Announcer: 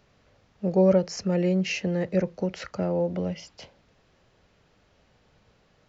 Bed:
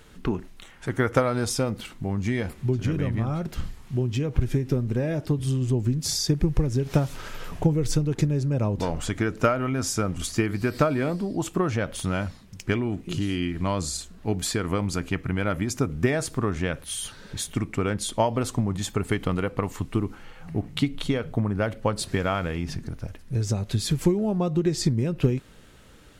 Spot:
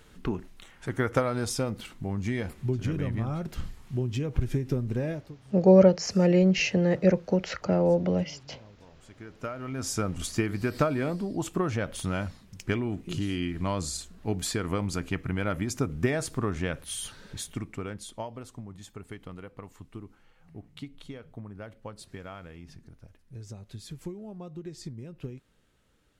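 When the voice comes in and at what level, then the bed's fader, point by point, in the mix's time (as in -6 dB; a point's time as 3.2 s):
4.90 s, +3.0 dB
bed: 5.1 s -4 dB
5.41 s -27.5 dB
8.92 s -27.5 dB
9.93 s -3.5 dB
17.16 s -3.5 dB
18.47 s -17 dB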